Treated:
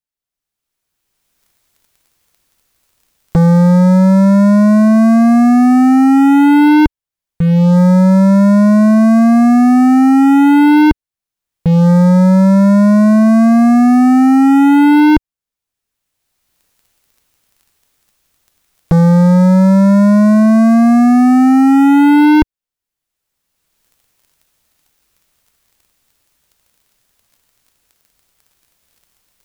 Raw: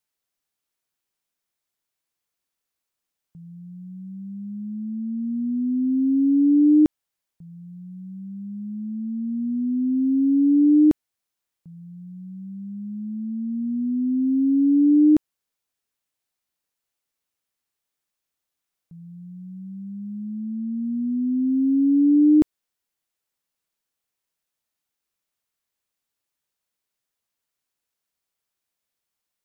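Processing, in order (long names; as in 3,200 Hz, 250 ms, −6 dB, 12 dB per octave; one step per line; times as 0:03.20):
camcorder AGC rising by 21 dB per second
low-shelf EQ 110 Hz +12 dB
leveller curve on the samples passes 5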